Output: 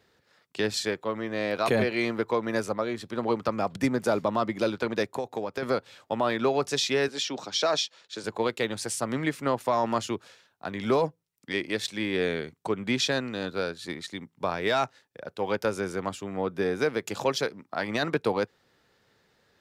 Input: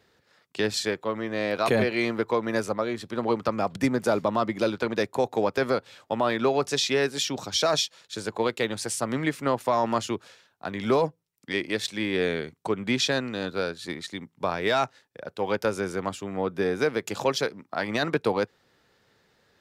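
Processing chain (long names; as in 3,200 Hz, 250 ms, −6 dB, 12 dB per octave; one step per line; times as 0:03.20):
0:05.03–0:05.63: downward compressor 10 to 1, threshold −26 dBFS, peak gain reduction 8 dB
0:07.08–0:08.24: three-way crossover with the lows and the highs turned down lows −13 dB, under 200 Hz, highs −14 dB, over 7,100 Hz
level −1.5 dB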